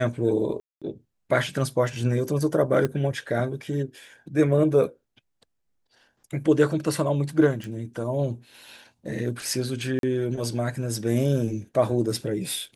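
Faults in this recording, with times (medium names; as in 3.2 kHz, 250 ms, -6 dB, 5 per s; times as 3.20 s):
0.60–0.82 s: dropout 216 ms
2.85 s: pop -13 dBFS
7.64 s: pop
9.99–10.03 s: dropout 42 ms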